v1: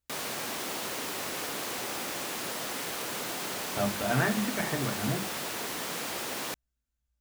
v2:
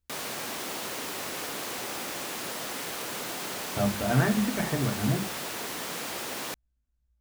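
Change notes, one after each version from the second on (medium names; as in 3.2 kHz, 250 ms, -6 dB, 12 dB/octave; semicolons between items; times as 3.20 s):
speech: add tilt EQ -2 dB/octave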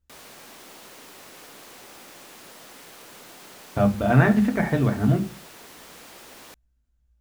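speech +7.0 dB; background -10.5 dB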